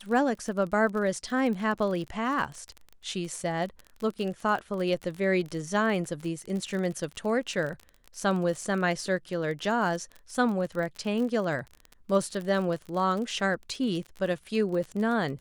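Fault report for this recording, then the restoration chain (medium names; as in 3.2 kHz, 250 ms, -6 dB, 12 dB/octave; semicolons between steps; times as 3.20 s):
crackle 30 per s -33 dBFS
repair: de-click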